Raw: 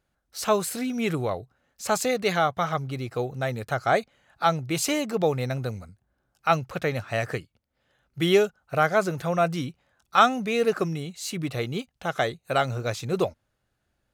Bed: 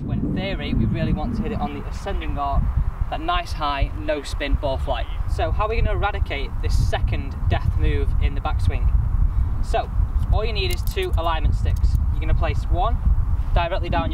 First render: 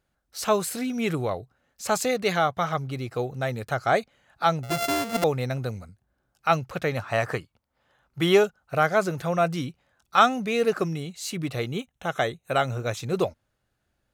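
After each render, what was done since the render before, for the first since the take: 4.63–5.24 s: sorted samples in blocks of 64 samples; 6.97–8.44 s: peaking EQ 1 kHz +8.5 dB 0.97 oct; 11.72–12.97 s: Butterworth band-stop 4.7 kHz, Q 3.4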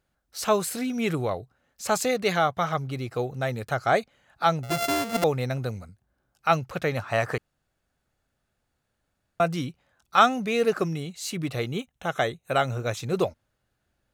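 7.38–9.40 s: room tone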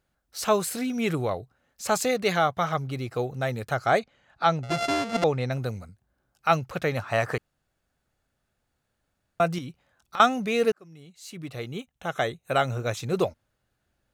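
3.99–5.52 s: low-pass 6.1 kHz; 9.58–10.20 s: compression, threshold -32 dBFS; 10.72–12.47 s: fade in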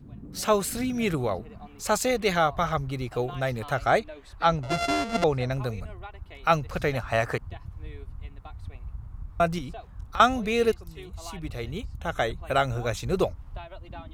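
add bed -19.5 dB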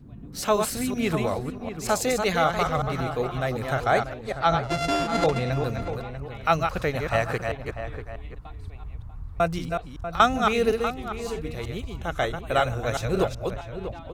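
chunks repeated in reverse 188 ms, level -5 dB; echo from a far wall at 110 m, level -10 dB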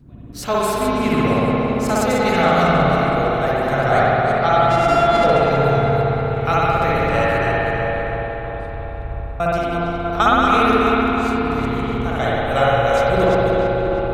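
on a send: filtered feedback delay 325 ms, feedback 68%, low-pass 3.1 kHz, level -6.5 dB; on the sum: spring tank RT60 2.5 s, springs 58 ms, chirp 40 ms, DRR -6.5 dB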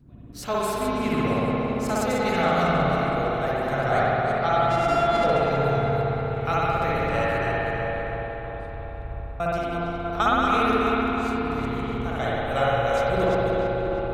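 trim -6.5 dB

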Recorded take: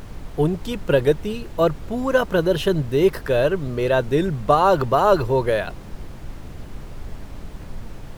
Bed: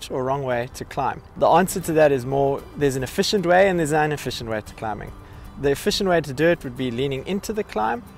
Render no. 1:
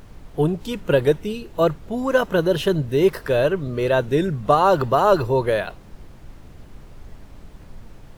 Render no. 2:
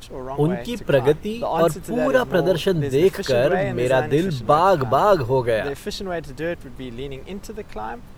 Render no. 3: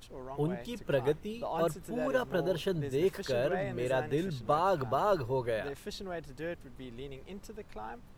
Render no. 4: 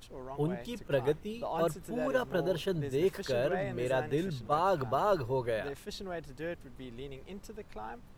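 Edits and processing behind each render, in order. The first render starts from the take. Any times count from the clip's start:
noise print and reduce 7 dB
add bed -8 dB
trim -12.5 dB
attacks held to a fixed rise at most 430 dB/s

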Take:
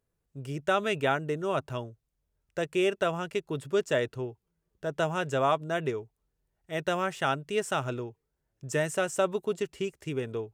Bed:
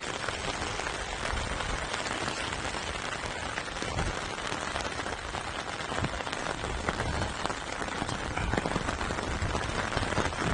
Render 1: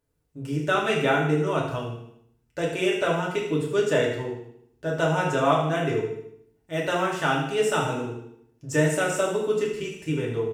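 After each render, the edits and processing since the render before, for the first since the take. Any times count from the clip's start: on a send: feedback delay 77 ms, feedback 48%, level -10.5 dB; on the sum: FDN reverb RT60 0.63 s, low-frequency decay 1.45×, high-frequency decay 0.95×, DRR -3 dB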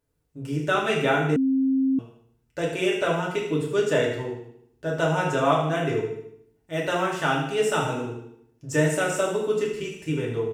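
1.36–1.99 s: bleep 266 Hz -18.5 dBFS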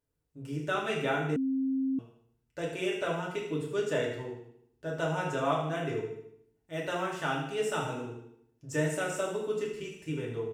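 trim -8 dB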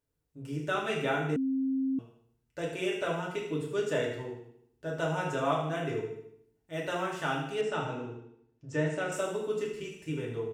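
7.61–9.12 s: distance through air 120 m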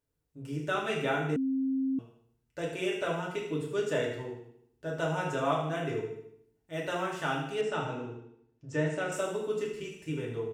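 no audible change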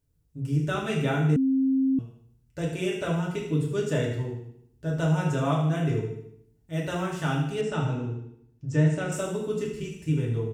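tone controls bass +15 dB, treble +5 dB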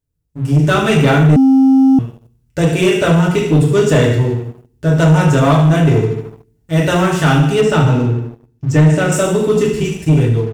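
level rider gain up to 10 dB; waveshaping leveller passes 2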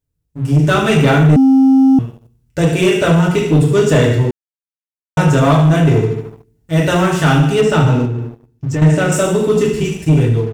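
4.31–5.17 s: mute; 8.05–8.82 s: compression, threshold -15 dBFS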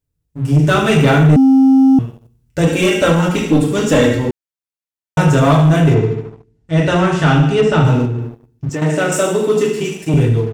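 2.67–4.29 s: comb 3.7 ms; 5.94–7.85 s: distance through air 74 m; 8.69–10.14 s: high-pass 230 Hz

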